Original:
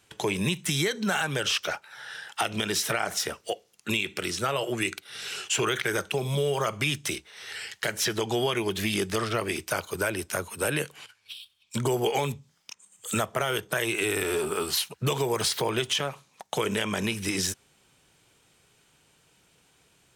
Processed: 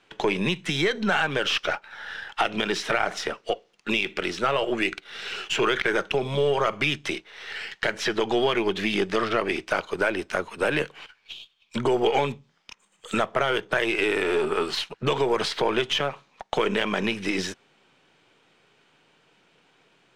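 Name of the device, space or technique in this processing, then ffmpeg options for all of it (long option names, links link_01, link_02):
crystal radio: -af "highpass=200,lowpass=3300,aeval=exprs='if(lt(val(0),0),0.708*val(0),val(0))':channel_layout=same,volume=6dB"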